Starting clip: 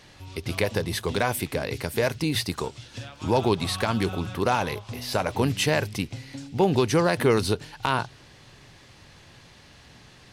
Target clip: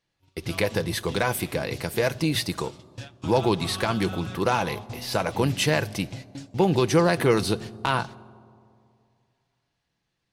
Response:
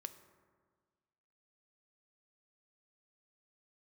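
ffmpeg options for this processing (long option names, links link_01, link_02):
-filter_complex "[0:a]agate=range=-28dB:threshold=-37dB:ratio=16:detection=peak,asplit=2[link_01][link_02];[1:a]atrim=start_sample=2205,asetrate=27783,aresample=44100,adelay=6[link_03];[link_02][link_03]afir=irnorm=-1:irlink=0,volume=-7.5dB[link_04];[link_01][link_04]amix=inputs=2:normalize=0"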